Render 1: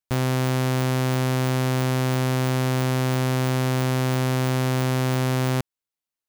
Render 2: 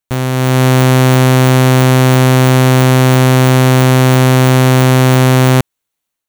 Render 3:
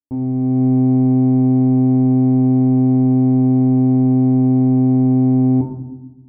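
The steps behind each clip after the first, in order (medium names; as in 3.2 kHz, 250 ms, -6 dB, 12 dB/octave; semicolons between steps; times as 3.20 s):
band-stop 5 kHz, Q 7.1; level rider gain up to 8 dB; trim +6.5 dB
cascade formant filter u; on a send at -3 dB: reverberation RT60 1.0 s, pre-delay 5 ms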